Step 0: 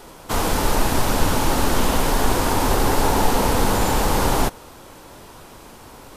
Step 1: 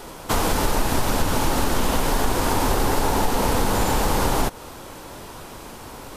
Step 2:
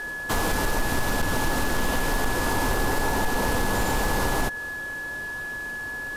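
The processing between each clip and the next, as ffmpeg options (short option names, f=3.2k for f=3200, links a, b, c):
-af "acompressor=threshold=-22dB:ratio=3,volume=4dB"
-af "aeval=exprs='val(0)+0.0447*sin(2*PI*1700*n/s)':c=same,asoftclip=type=hard:threshold=-14dB,volume=-3.5dB"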